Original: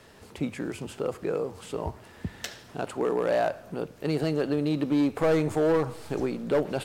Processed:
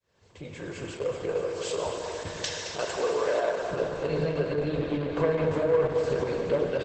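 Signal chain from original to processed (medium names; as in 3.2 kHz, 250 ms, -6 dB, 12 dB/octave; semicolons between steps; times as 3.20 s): fade-in on the opening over 1.80 s; high-pass 42 Hz 12 dB/octave; low-pass that closes with the level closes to 2.5 kHz, closed at -19.5 dBFS; 1.34–3.70 s: tone controls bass -13 dB, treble +9 dB; comb 1.9 ms, depth 73%; dynamic bell 7.6 kHz, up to -4 dB, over -52 dBFS, Q 1.4; compression 2:1, threshold -36 dBFS, peak gain reduction 11 dB; speakerphone echo 220 ms, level -8 dB; reverberation RT60 4.5 s, pre-delay 5 ms, DRR -0.5 dB; trim +4 dB; Opus 10 kbps 48 kHz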